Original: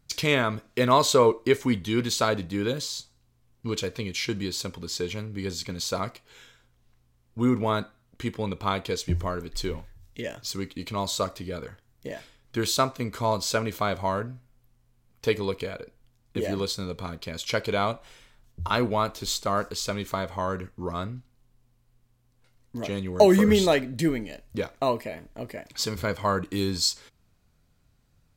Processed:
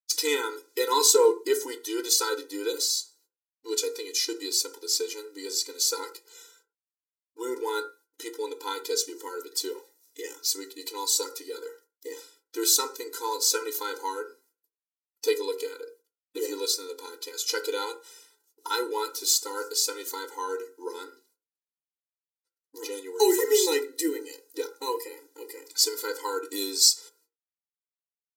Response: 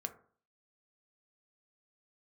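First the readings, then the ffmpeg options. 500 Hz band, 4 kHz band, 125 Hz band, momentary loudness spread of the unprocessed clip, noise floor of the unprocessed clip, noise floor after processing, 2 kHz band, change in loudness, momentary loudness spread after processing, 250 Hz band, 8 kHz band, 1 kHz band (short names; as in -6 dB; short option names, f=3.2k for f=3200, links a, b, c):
-2.0 dB, +3.0 dB, under -40 dB, 16 LU, -66 dBFS, under -85 dBFS, -5.0 dB, 0.0 dB, 19 LU, -9.0 dB, +9.0 dB, -4.5 dB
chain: -filter_complex "[0:a]aexciter=amount=5:drive=5.4:freq=4.2k,agate=range=-56dB:threshold=-54dB:ratio=16:detection=peak[a];[1:a]atrim=start_sample=2205,afade=t=out:st=0.17:d=0.01,atrim=end_sample=7938,atrim=end_sample=6174[b];[a][b]afir=irnorm=-1:irlink=0,afftfilt=real='re*eq(mod(floor(b*sr/1024/260),2),1)':imag='im*eq(mod(floor(b*sr/1024/260),2),1)':win_size=1024:overlap=0.75"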